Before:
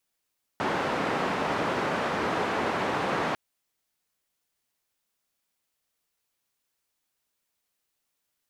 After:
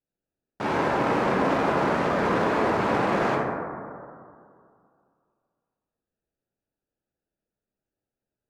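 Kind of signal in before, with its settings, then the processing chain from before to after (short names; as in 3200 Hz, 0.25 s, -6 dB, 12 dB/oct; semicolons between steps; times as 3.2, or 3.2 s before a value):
noise band 140–1200 Hz, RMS -28 dBFS 2.75 s
Wiener smoothing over 41 samples; plate-style reverb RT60 2.3 s, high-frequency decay 0.25×, DRR -4.5 dB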